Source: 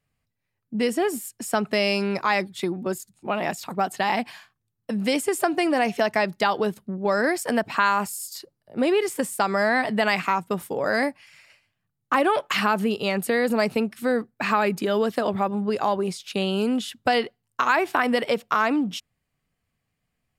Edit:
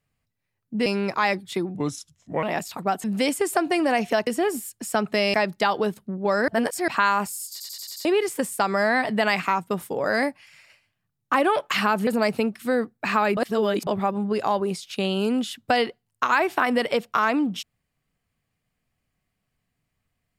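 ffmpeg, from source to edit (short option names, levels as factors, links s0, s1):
-filter_complex "[0:a]asplit=18[s0][s1][s2][s3][s4][s5][s6][s7][s8][s9][s10][s11][s12][s13][s14][s15][s16][s17];[s0]atrim=end=0.862[s18];[s1]atrim=start=1.928:end=2.824[s19];[s2]atrim=start=2.82:end=3.35,asetpts=PTS-STARTPTS,asetrate=34398,aresample=44100,atrim=end_sample=29965,asetpts=PTS-STARTPTS[s20];[s3]atrim=start=3.346:end=3.962[s21];[s4]atrim=start=4.908:end=6.142[s22];[s5]atrim=start=0.858:end=1.932[s23];[s6]atrim=start=6.138:end=7.282[s24];[s7]atrim=start=7.278:end=7.682,asetpts=PTS-STARTPTS,areverse[s25];[s8]atrim=start=7.678:end=8.402[s26];[s9]atrim=start=8.308:end=8.402[s27];[s10]atrim=start=8.308:end=8.402[s28];[s11]atrim=start=8.308:end=8.402[s29];[s12]atrim=start=8.308:end=8.402[s30];[s13]atrim=start=8.308:end=8.402[s31];[s14]atrim=start=8.848:end=12.872[s32];[s15]atrim=start=13.438:end=14.742[s33];[s16]atrim=start=14.738:end=15.242,asetpts=PTS-STARTPTS,areverse[s34];[s17]atrim=start=15.238[s35];[s18][s19]acrossfade=d=0.004:c1=hsin:c2=hsin[s36];[s36][s20]acrossfade=d=0.004:c1=hsin:c2=hsin[s37];[s37][s21]acrossfade=d=0.004:c1=hsin:c2=hsin[s38];[s38][s22]acrossfade=d=0.004:c1=hsin:c2=hsin[s39];[s39][s23]acrossfade=d=0.004:c1=hsin:c2=hsin[s40];[s40][s24]acrossfade=d=0.004:c1=hsin:c2=hsin[s41];[s41][s25]acrossfade=d=0.004:c1=hsin:c2=hsin[s42];[s42][s26]acrossfade=d=0.004:c1=hsin:c2=hsin[s43];[s43][s27]acrossfade=d=0.004:c1=hsin:c2=hsin[s44];[s44][s28]acrossfade=d=0.004:c1=hsin:c2=hsin[s45];[s45][s29]acrossfade=d=0.004:c1=hsin:c2=hsin[s46];[s46][s30]acrossfade=d=0.004:c1=hsin:c2=hsin[s47];[s47][s31]acrossfade=d=0.004:c1=hsin:c2=hsin[s48];[s48][s32]acrossfade=d=0.004:c1=hsin:c2=hsin[s49];[s49][s33]acrossfade=d=0.004:c1=hsin:c2=hsin[s50];[s50][s34]acrossfade=d=0.004:c1=hsin:c2=hsin[s51];[s51][s35]acrossfade=d=0.004:c1=hsin:c2=hsin"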